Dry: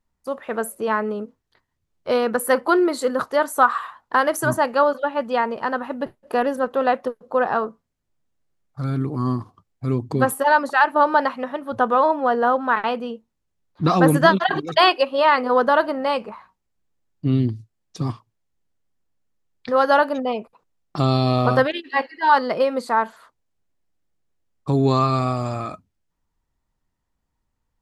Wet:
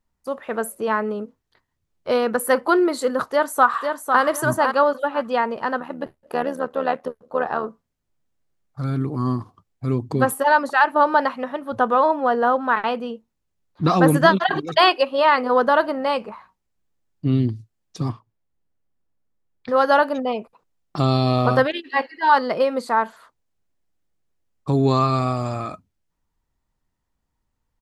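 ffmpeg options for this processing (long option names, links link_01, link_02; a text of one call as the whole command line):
ffmpeg -i in.wav -filter_complex "[0:a]asplit=2[link_01][link_02];[link_02]afade=type=in:start_time=3.23:duration=0.01,afade=type=out:start_time=4.21:duration=0.01,aecho=0:1:500|1000|1500:0.530884|0.132721|0.0331803[link_03];[link_01][link_03]amix=inputs=2:normalize=0,asettb=1/sr,asplit=3[link_04][link_05][link_06];[link_04]atrim=end=5.804[link_07];[link_05]atrim=start=5.8:end=7.64,asetpts=PTS-STARTPTS,afade=type=in:duration=0.004:curve=qsin,afade=type=out:start_time=1.836:duration=0.004:curve=qsin,tremolo=f=76:d=0.71[link_08];[link_06]atrim=start=7.636[link_09];[link_07][link_08]acrossfade=duration=0.004:curve1=hsin:curve2=qsin[link_10];[link_10][link_09]acrossfade=duration=0.004:curve1=qsin:curve2=hsin,asettb=1/sr,asplit=3[link_11][link_12][link_13];[link_11]atrim=end=18.094[link_14];[link_12]atrim=start=18.09:end=19.69,asetpts=PTS-STARTPTS,afade=type=in:duration=0.004:curve=qsin,afade=type=out:start_time=1.596:duration=0.004:curve=qsin,highshelf=frequency=2700:gain=-10.5[link_15];[link_13]atrim=start=19.686[link_16];[link_14][link_15]acrossfade=duration=0.004:curve1=hsin:curve2=qsin[link_17];[link_17][link_16]acrossfade=duration=0.004:curve1=qsin:curve2=hsin" out.wav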